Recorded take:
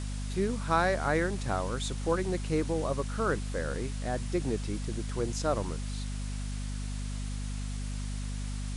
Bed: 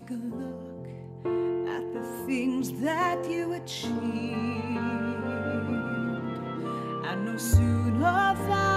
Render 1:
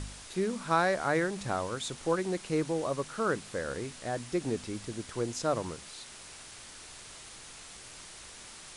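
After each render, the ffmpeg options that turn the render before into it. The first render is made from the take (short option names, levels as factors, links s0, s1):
-af "bandreject=f=50:t=h:w=4,bandreject=f=100:t=h:w=4,bandreject=f=150:t=h:w=4,bandreject=f=200:t=h:w=4,bandreject=f=250:t=h:w=4"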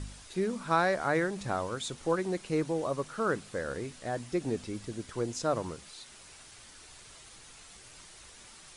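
-af "afftdn=nr=6:nf=-49"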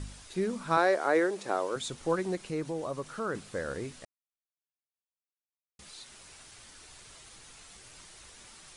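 -filter_complex "[0:a]asettb=1/sr,asplit=3[s0][s1][s2];[s0]atrim=end=0.774[s3];[s1]atrim=start=0.77:end=1.76,asetpts=PTS-STARTPTS,afade=t=in:d=0.004:c=qsin,afade=t=out:st=0.986:d=0.004:c=qsin,highpass=f=380:t=q:w=1.8[s4];[s2]atrim=start=1.756[s5];[s3][s4]acrossfade=d=0.004:c1=hsin:c2=qsin[s6];[s6][s5]acrossfade=d=0.004:c1=qsin:c2=hsin,asettb=1/sr,asplit=3[s7][s8][s9];[s7]atrim=end=2.354[s10];[s8]atrim=start=2.35:end=3.35,asetpts=PTS-STARTPTS,afade=t=in:d=0.004:c=qsin,afade=t=out:st=0.996:d=0.004:c=qsin,acompressor=threshold=0.0158:ratio=1.5:attack=3.2:release=140:knee=1:detection=peak[s11];[s9]atrim=start=3.346[s12];[s10][s11]acrossfade=d=0.004:c1=hsin:c2=qsin[s13];[s13][s12]acrossfade=d=0.004:c1=qsin:c2=hsin,asplit=3[s14][s15][s16];[s14]atrim=end=4.05,asetpts=PTS-STARTPTS,afade=t=out:st=4.046:d=0.004:c=hsin[s17];[s15]atrim=start=4.05:end=5.79,asetpts=PTS-STARTPTS,volume=0[s18];[s16]atrim=start=5.79,asetpts=PTS-STARTPTS,afade=t=in:d=0.004:c=hsin[s19];[s17][s18][s19]concat=n=3:v=0:a=1"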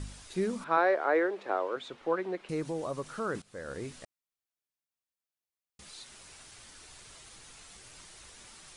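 -filter_complex "[0:a]asettb=1/sr,asplit=3[s0][s1][s2];[s0]atrim=end=0.644[s3];[s1]atrim=start=0.64:end=2.49,asetpts=PTS-STARTPTS,afade=t=in:d=0.004:c=qsin,afade=t=out:st=1.846:d=0.004:c=qsin,acrossover=split=270 3400:gain=0.141 1 0.0631[s4][s5][s6];[s4][s5][s6]amix=inputs=3:normalize=0[s7];[s2]atrim=start=2.486[s8];[s3][s7]acrossfade=d=0.004:c1=hsin:c2=qsin[s9];[s9][s8]acrossfade=d=0.004:c1=qsin:c2=hsin,asplit=2[s10][s11];[s10]atrim=end=3.42,asetpts=PTS-STARTPTS,afade=t=out:st=3.416:d=0.004:c=hsin:silence=0.125893[s12];[s11]atrim=start=3.42,asetpts=PTS-STARTPTS,afade=t=in:d=0.5:silence=0.125893[s13];[s12][s13]concat=n=2:v=0:a=1"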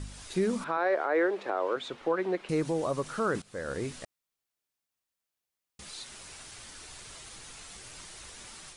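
-af "alimiter=limit=0.0668:level=0:latency=1:release=107,dynaudnorm=f=110:g=3:m=1.78"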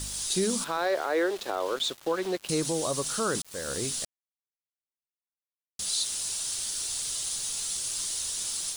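-af "aexciter=amount=3:drive=9.2:freq=3100,aeval=exprs='val(0)*gte(abs(val(0)),0.0112)':c=same"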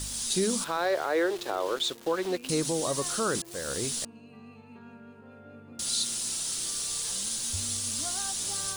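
-filter_complex "[1:a]volume=0.112[s0];[0:a][s0]amix=inputs=2:normalize=0"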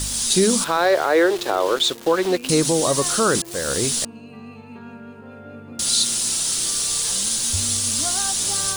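-af "volume=3.16"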